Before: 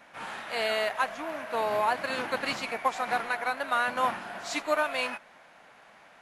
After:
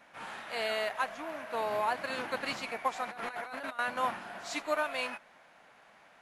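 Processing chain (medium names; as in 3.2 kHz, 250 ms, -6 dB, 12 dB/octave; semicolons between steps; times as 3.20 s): 3.10–3.79 s: compressor with a negative ratio -37 dBFS, ratio -1; trim -4.5 dB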